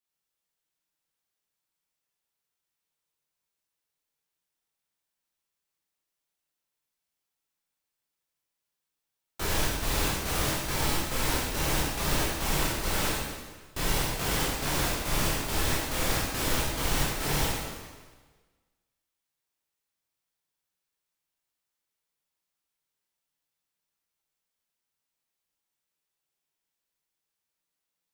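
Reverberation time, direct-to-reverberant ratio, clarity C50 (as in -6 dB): 1.4 s, -6.0 dB, -1.0 dB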